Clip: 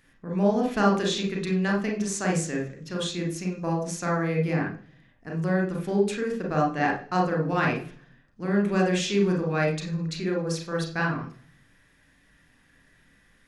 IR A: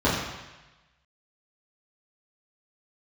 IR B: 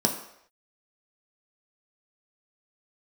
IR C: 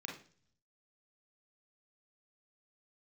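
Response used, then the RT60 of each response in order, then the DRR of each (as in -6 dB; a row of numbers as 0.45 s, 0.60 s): C; 1.1 s, no single decay rate, 0.45 s; -10.5 dB, 1.5 dB, -0.5 dB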